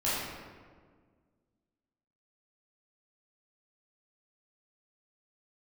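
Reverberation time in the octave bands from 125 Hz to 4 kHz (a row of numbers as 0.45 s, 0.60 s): 2.1 s, 2.2 s, 1.8 s, 1.5 s, 1.3 s, 0.95 s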